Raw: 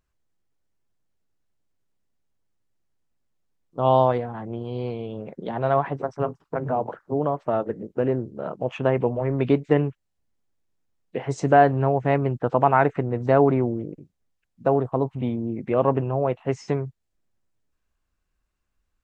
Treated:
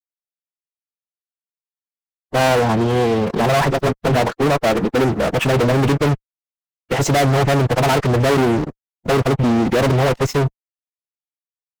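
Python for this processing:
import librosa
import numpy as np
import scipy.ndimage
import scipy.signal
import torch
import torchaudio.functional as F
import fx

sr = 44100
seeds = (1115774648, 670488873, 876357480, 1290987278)

y = fx.fuzz(x, sr, gain_db=37.0, gate_db=-46.0)
y = fx.stretch_vocoder(y, sr, factor=0.62)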